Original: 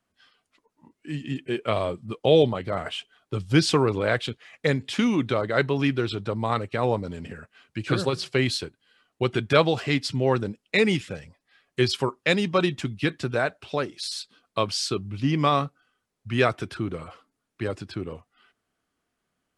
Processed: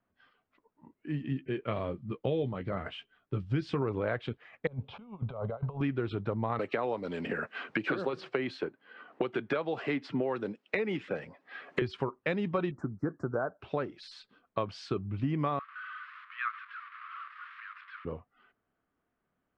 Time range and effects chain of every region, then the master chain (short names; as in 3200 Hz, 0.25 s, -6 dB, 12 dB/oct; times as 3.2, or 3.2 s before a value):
1.3–3.82 bell 750 Hz -7.5 dB 1.8 oct + doubler 15 ms -10.5 dB
4.67–5.81 negative-ratio compressor -29 dBFS, ratio -0.5 + air absorption 350 m + fixed phaser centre 760 Hz, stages 4
6.59–11.82 HPF 270 Hz + three-band squash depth 100%
12.71–13.6 Chebyshev band-stop 1400–6200 Hz, order 3 + low shelf 110 Hz -10 dB
15.59–18.05 delta modulation 64 kbps, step -28 dBFS + steep high-pass 1100 Hz 96 dB/oct + air absorption 420 m
whole clip: LPF 1800 Hz 12 dB/oct; compressor 5:1, threshold -26 dBFS; gain -1.5 dB